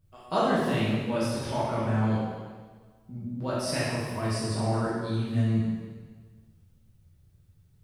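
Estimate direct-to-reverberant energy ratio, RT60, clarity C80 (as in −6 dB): −9.5 dB, 1.5 s, 0.5 dB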